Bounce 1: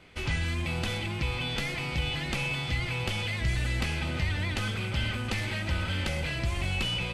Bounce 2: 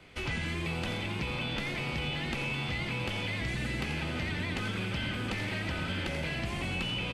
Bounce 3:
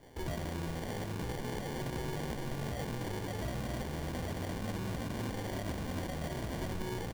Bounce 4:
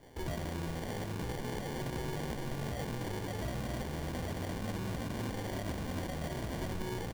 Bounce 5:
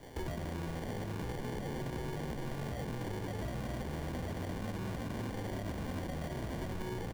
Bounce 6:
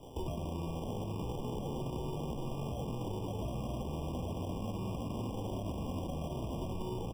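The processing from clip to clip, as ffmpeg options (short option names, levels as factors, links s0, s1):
-filter_complex "[0:a]asplit=7[s0][s1][s2][s3][s4][s5][s6];[s1]adelay=85,afreqshift=83,volume=0.355[s7];[s2]adelay=170,afreqshift=166,volume=0.188[s8];[s3]adelay=255,afreqshift=249,volume=0.1[s9];[s4]adelay=340,afreqshift=332,volume=0.0531[s10];[s5]adelay=425,afreqshift=415,volume=0.0279[s11];[s6]adelay=510,afreqshift=498,volume=0.0148[s12];[s0][s7][s8][s9][s10][s11][s12]amix=inputs=7:normalize=0,acrossover=split=140|3500[s13][s14][s15];[s13]acompressor=threshold=0.01:ratio=4[s16];[s14]acompressor=threshold=0.0251:ratio=4[s17];[s15]acompressor=threshold=0.00355:ratio=4[s18];[s16][s17][s18]amix=inputs=3:normalize=0"
-af "alimiter=level_in=1.33:limit=0.0631:level=0:latency=1:release=100,volume=0.75,acrusher=samples=34:mix=1:aa=0.000001,volume=0.841"
-af anull
-filter_complex "[0:a]acrossover=split=450|2600[s0][s1][s2];[s0]acompressor=threshold=0.00708:ratio=4[s3];[s1]acompressor=threshold=0.00282:ratio=4[s4];[s2]acompressor=threshold=0.00112:ratio=4[s5];[s3][s4][s5]amix=inputs=3:normalize=0,volume=1.88"
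-af "afftfilt=real='re*eq(mod(floor(b*sr/1024/1200),2),0)':imag='im*eq(mod(floor(b*sr/1024/1200),2),0)':win_size=1024:overlap=0.75,volume=1.12"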